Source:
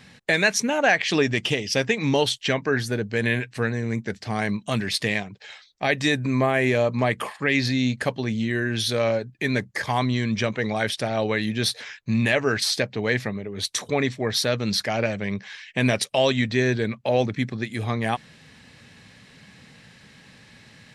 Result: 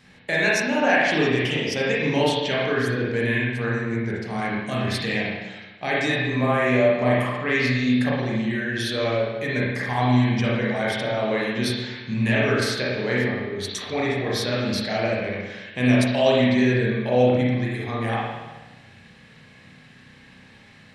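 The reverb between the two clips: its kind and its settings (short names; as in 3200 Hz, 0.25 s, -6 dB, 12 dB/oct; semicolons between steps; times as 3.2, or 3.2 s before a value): spring tank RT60 1.2 s, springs 32/52 ms, chirp 30 ms, DRR -6 dB; gain -6 dB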